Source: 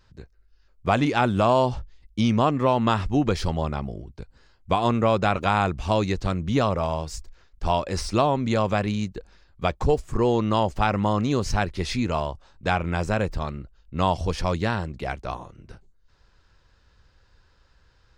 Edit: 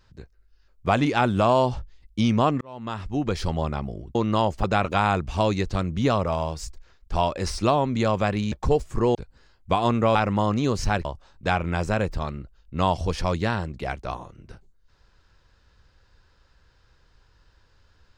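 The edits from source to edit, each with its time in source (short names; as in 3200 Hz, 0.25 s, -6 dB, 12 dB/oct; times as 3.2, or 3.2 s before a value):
2.61–3.56 fade in
4.15–5.15 swap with 10.33–10.82
9.03–9.7 cut
11.72–12.25 cut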